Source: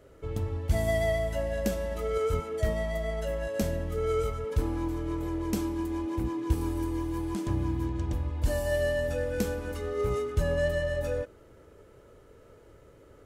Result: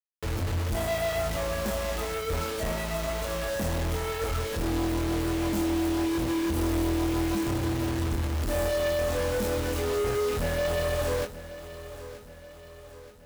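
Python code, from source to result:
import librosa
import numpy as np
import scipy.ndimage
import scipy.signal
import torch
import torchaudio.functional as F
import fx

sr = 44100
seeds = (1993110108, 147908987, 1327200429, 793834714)

y = fx.quant_companded(x, sr, bits=2)
y = fx.doubler(y, sr, ms=24.0, db=-5.5)
y = fx.echo_feedback(y, sr, ms=928, feedback_pct=52, wet_db=-14.5)
y = y * librosa.db_to_amplitude(-4.0)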